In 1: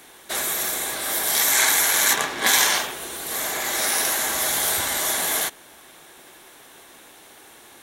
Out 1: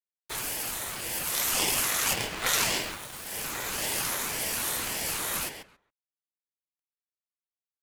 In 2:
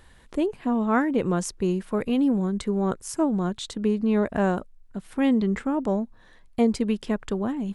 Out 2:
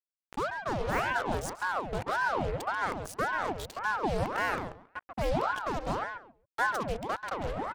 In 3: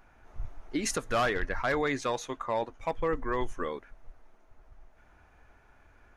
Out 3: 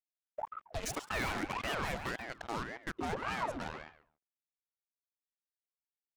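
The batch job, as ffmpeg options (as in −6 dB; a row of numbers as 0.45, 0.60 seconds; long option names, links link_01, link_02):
-filter_complex "[0:a]acrusher=bits=4:mix=0:aa=0.5,asplit=2[link_01][link_02];[link_02]adelay=137,lowpass=frequency=2900:poles=1,volume=-6dB,asplit=2[link_03][link_04];[link_04]adelay=137,lowpass=frequency=2900:poles=1,volume=0.19,asplit=2[link_05][link_06];[link_06]adelay=137,lowpass=frequency=2900:poles=1,volume=0.19[link_07];[link_01][link_03][link_05][link_07]amix=inputs=4:normalize=0,aeval=exprs='val(0)*sin(2*PI*760*n/s+760*0.7/1.8*sin(2*PI*1.8*n/s))':channel_layout=same,volume=-5.5dB"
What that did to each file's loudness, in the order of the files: −8.0, −7.0, −6.5 LU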